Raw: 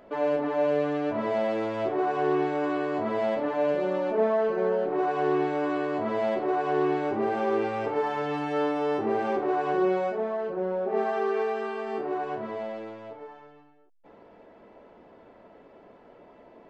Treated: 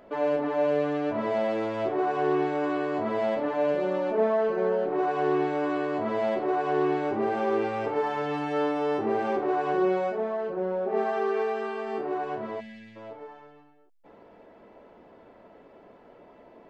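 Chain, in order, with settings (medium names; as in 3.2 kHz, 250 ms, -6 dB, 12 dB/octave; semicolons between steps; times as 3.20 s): time-frequency box 12.60–12.96 s, 260–1600 Hz -22 dB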